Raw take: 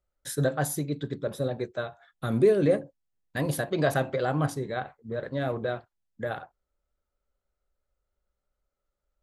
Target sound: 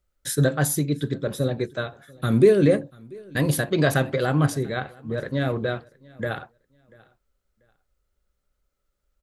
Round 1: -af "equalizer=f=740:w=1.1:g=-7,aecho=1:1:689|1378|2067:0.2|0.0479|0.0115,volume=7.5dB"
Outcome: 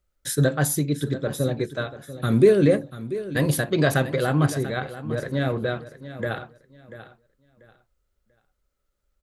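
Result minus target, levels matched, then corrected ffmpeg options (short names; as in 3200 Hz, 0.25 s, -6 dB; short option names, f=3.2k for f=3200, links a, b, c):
echo-to-direct +11 dB
-af "equalizer=f=740:w=1.1:g=-7,aecho=1:1:689|1378:0.0562|0.0135,volume=7.5dB"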